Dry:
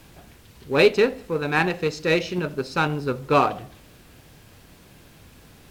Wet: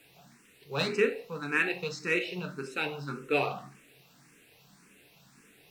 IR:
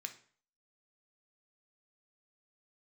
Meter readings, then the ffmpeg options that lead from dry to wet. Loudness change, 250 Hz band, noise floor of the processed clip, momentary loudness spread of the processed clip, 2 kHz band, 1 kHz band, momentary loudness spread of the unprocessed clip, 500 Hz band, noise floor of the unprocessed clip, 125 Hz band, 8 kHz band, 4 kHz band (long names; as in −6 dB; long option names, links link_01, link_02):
−8.5 dB, −10.0 dB, −61 dBFS, 10 LU, −5.0 dB, −13.0 dB, 10 LU, −10.5 dB, −51 dBFS, −11.0 dB, −6.0 dB, −7.0 dB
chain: -filter_complex "[1:a]atrim=start_sample=2205,asetrate=48510,aresample=44100[link_01];[0:a][link_01]afir=irnorm=-1:irlink=0,asplit=2[link_02][link_03];[link_03]afreqshift=1.8[link_04];[link_02][link_04]amix=inputs=2:normalize=1"